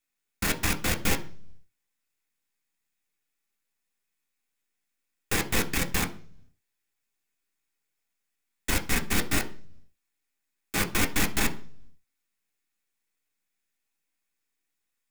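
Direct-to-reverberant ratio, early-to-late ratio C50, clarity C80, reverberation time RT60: 4.0 dB, 16.5 dB, 21.5 dB, 0.50 s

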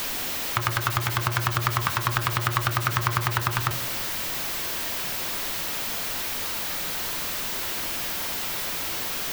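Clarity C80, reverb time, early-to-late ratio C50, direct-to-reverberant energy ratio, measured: 21.0 dB, 0.45 s, 17.0 dB, 10.0 dB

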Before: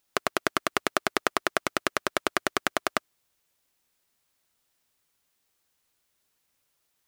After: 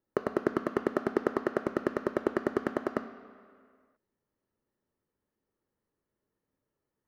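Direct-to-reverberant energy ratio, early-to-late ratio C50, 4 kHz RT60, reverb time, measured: 10.0 dB, 12.5 dB, 1.6 s, 2.1 s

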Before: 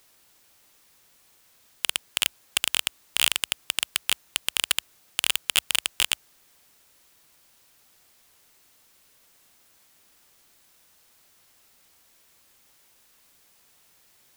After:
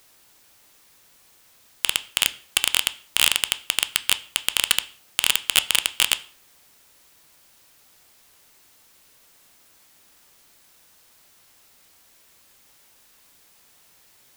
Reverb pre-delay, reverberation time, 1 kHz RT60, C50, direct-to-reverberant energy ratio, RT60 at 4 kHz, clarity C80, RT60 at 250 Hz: 6 ms, 0.45 s, 0.45 s, 18.5 dB, 11.5 dB, 0.40 s, 22.5 dB, 0.45 s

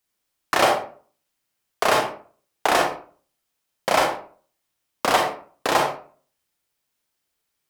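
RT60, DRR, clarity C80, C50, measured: 0.45 s, 1.0 dB, 10.0 dB, 5.0 dB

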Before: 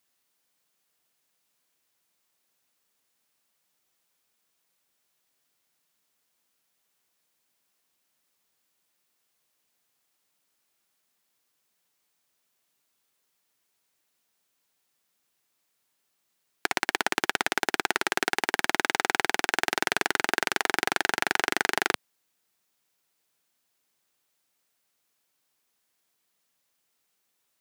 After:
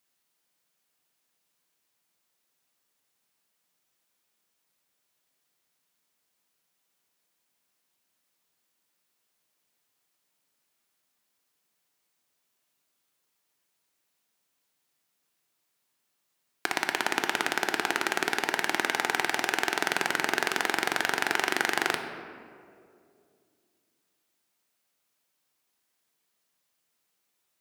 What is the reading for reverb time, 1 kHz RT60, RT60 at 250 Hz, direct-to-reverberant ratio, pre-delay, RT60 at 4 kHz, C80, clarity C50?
2.3 s, 2.0 s, 2.9 s, 5.5 dB, 3 ms, 1.2 s, 8.5 dB, 7.5 dB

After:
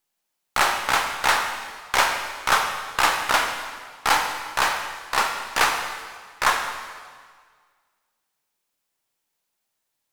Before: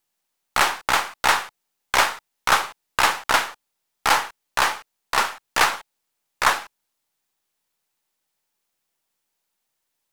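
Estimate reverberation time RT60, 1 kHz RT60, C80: 1.7 s, 1.8 s, 6.5 dB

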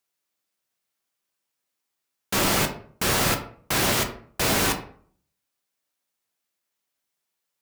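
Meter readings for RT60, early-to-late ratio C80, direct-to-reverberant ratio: 0.55 s, 14.5 dB, 4.0 dB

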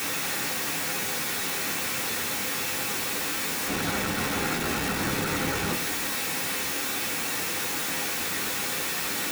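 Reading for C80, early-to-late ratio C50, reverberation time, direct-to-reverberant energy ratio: 17.0 dB, 12.5 dB, 0.45 s, −3.0 dB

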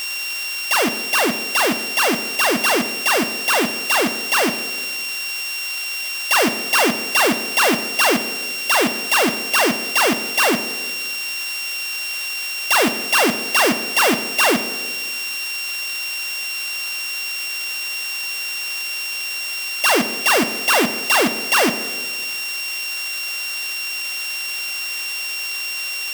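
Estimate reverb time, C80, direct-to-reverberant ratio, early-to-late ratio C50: 1.4 s, 13.5 dB, 10.0 dB, 12.0 dB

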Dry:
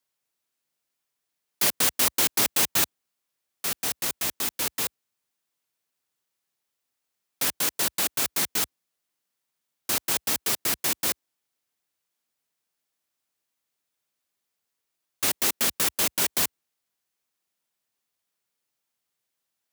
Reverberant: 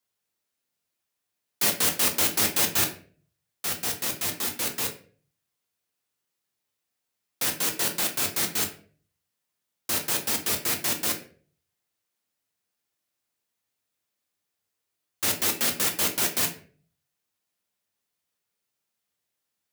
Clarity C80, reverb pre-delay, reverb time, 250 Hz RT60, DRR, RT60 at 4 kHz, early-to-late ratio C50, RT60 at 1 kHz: 15.0 dB, 6 ms, 0.45 s, 0.55 s, 2.0 dB, 0.30 s, 10.5 dB, 0.40 s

